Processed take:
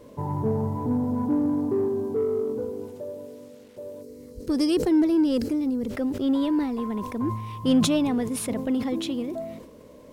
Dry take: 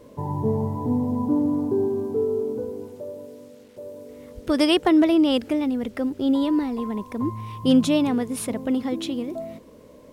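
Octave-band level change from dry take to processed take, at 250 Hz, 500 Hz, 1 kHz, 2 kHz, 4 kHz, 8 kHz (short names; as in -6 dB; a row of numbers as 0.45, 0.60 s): -2.0, -2.5, -3.5, -6.5, -5.0, +1.0 dB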